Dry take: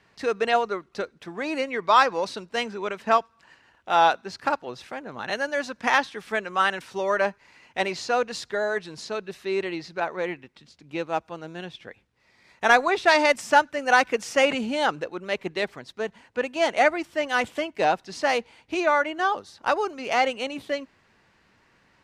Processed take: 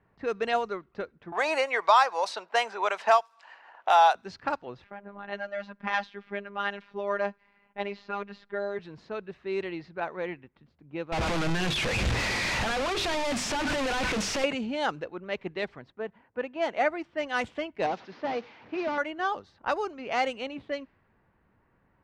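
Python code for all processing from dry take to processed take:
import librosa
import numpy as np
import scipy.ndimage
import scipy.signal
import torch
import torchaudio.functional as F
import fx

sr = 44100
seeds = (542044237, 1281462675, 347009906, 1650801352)

y = fx.chain(x, sr, fx.highpass_res(hz=740.0, q=2.3),
    fx.high_shelf(hz=4500.0, db=8.0),
    fx.band_squash(depth_pct=70), at=(1.32, 4.15))
y = fx.chain(y, sr, fx.lowpass(hz=4400.0, slope=12),
    fx.robotise(hz=201.0), at=(4.84, 8.79))
y = fx.chain(y, sr, fx.clip_1bit(),
    fx.peak_eq(hz=2500.0, db=2.5, octaves=0.24),
    fx.hum_notches(base_hz=50, count=9), at=(11.12, 14.44))
y = fx.chain(y, sr, fx.lowpass(hz=2300.0, slope=6),
    fx.low_shelf(hz=94.0, db=-11.0), at=(15.9, 17.17))
y = fx.chain(y, sr, fx.delta_mod(bps=32000, step_db=-38.0),
    fx.highpass(hz=190.0, slope=12), at=(17.86, 18.98))
y = fx.env_lowpass(y, sr, base_hz=1300.0, full_db=-17.0)
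y = fx.low_shelf(y, sr, hz=130.0, db=8.0)
y = y * 10.0 ** (-5.5 / 20.0)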